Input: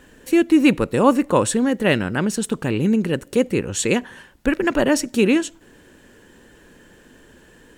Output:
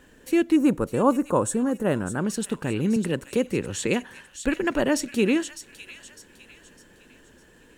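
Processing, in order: 0.56–2.25 s: high-order bell 3.1 kHz -12.5 dB; feedback echo behind a high-pass 605 ms, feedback 40%, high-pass 2.2 kHz, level -9.5 dB; 2.96–3.87 s: three bands compressed up and down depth 40%; trim -5 dB

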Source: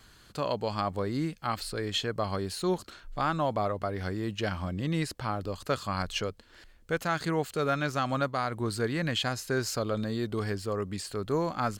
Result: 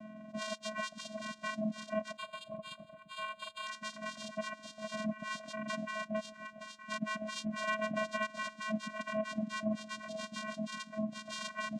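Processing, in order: spectrum inverted on a logarithmic axis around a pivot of 1.5 kHz; 5.13–5.65 s: spectral replace 580–1500 Hz after; 7.63–8.27 s: peaking EQ 770 Hz +14.5 dB 2 oct; overdrive pedal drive 11 dB, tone 2.8 kHz, clips at -16 dBFS; two-band feedback delay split 1.1 kHz, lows 129 ms, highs 457 ms, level -9 dB; vocoder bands 4, square 215 Hz; reverb removal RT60 0.8 s; compression 2:1, threshold -43 dBFS, peak gain reduction 12 dB; 2.17–3.67 s: static phaser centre 1.2 kHz, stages 8; trim +3 dB

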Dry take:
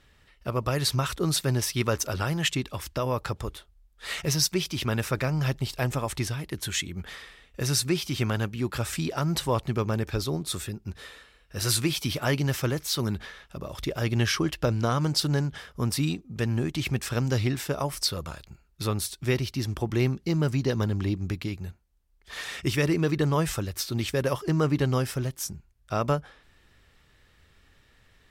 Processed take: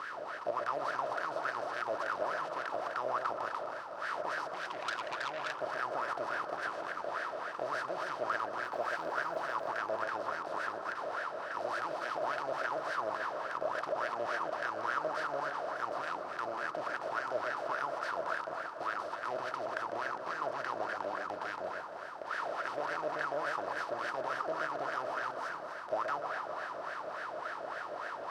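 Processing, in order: spectral levelling over time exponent 0.2; wah-wah 3.5 Hz 620–1600 Hz, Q 12; 8.61–9.66 s: crackle 410 per s -54 dBFS; on a send: echo whose repeats swap between lows and highs 127 ms, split 1.2 kHz, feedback 74%, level -6 dB; 4.54–5.61 s: on the sum: transformer saturation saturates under 3.1 kHz; trim -2.5 dB

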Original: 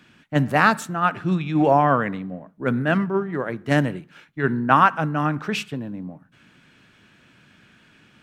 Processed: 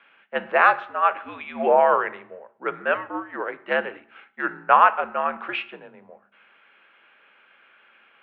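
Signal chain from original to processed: FDN reverb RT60 0.58 s, low-frequency decay 1.55×, high-frequency decay 0.85×, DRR 13 dB; mistuned SSB -75 Hz 520–3100 Hz; trim +1 dB

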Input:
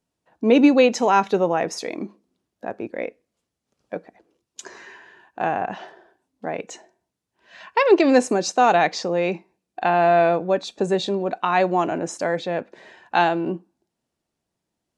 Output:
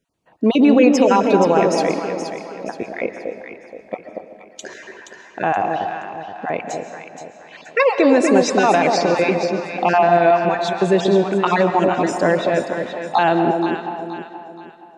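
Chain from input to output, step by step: random holes in the spectrogram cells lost 21%; tone controls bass +1 dB, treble -10 dB; peak limiter -12 dBFS, peak gain reduction 7 dB; treble shelf 3.9 kHz +7.5 dB; echo whose repeats swap between lows and highs 237 ms, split 910 Hz, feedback 61%, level -3.5 dB; reverberation RT60 1.5 s, pre-delay 95 ms, DRR 9 dB; trim +5.5 dB

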